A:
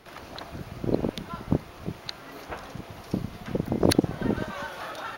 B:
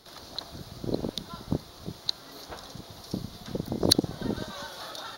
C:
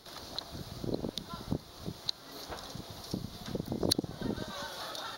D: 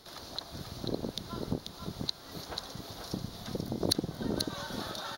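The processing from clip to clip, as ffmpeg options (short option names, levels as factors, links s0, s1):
-af "highshelf=f=3200:t=q:w=3:g=7,volume=0.596"
-af "acompressor=threshold=0.0126:ratio=1.5"
-af "aecho=1:1:488:0.562"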